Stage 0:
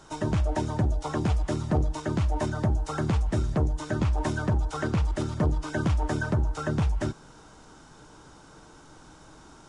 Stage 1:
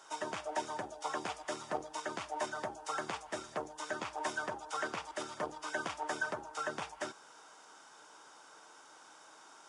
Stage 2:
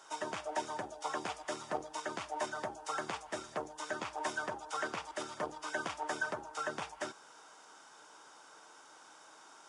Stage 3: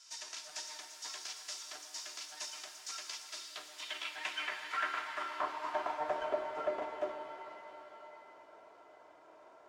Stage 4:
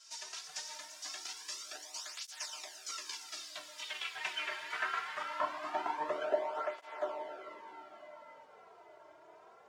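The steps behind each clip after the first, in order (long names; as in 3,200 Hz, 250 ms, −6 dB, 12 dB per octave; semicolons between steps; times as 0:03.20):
high-pass filter 670 Hz 12 dB per octave; notch filter 4,100 Hz, Q 13; level −2 dB
no processing that can be heard
lower of the sound and its delayed copy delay 3 ms; band-pass filter sweep 5,400 Hz → 570 Hz, 0:03.16–0:06.32; reverb with rising layers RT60 3.3 s, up +7 semitones, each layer −8 dB, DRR 5.5 dB; level +8.5 dB
through-zero flanger with one copy inverted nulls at 0.22 Hz, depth 4.1 ms; level +3.5 dB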